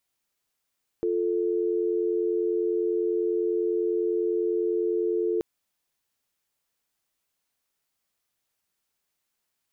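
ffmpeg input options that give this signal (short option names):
-f lavfi -i "aevalsrc='0.0531*(sin(2*PI*350*t)+sin(2*PI*440*t))':d=4.38:s=44100"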